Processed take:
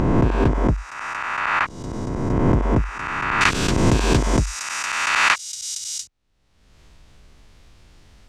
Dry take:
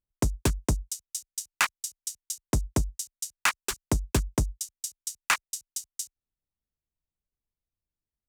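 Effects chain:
peak hold with a rise ahead of every peak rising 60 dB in 2.02 s
low-pass filter 1,600 Hz 12 dB per octave, from 0:03.41 5,000 Hz
upward compression, threshold −26 dBFS
level +4.5 dB

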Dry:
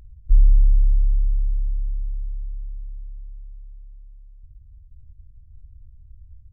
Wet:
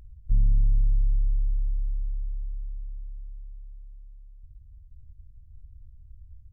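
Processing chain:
soft clipping −13 dBFS, distortion −13 dB
level −2.5 dB

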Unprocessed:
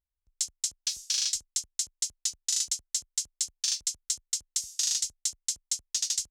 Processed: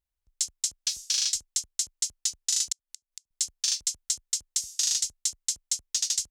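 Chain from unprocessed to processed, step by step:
0:02.72–0:03.31: gate with flip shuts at −24 dBFS, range −39 dB
level +2 dB

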